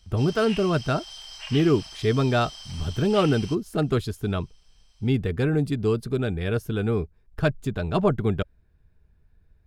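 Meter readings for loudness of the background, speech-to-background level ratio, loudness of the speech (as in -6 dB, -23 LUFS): -38.0 LUFS, 13.0 dB, -25.0 LUFS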